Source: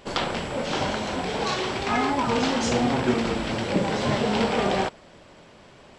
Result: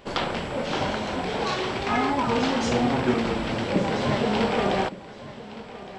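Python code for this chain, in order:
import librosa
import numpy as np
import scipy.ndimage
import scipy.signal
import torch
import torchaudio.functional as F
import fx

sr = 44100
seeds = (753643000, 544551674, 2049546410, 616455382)

y = fx.peak_eq(x, sr, hz=7800.0, db=-5.5, octaves=1.3)
y = y + 10.0 ** (-16.5 / 20.0) * np.pad(y, (int(1164 * sr / 1000.0), 0))[:len(y)]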